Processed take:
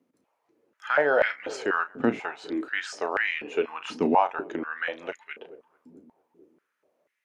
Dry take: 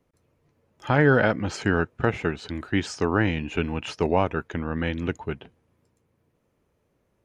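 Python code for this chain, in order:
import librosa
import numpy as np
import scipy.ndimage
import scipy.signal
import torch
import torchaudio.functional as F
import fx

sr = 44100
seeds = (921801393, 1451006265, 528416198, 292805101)

y = fx.doubler(x, sr, ms=34.0, db=-12.0)
y = fx.echo_filtered(y, sr, ms=222, feedback_pct=77, hz=970.0, wet_db=-20.0)
y = fx.filter_held_highpass(y, sr, hz=4.1, low_hz=250.0, high_hz=2000.0)
y = F.gain(torch.from_numpy(y), -5.0).numpy()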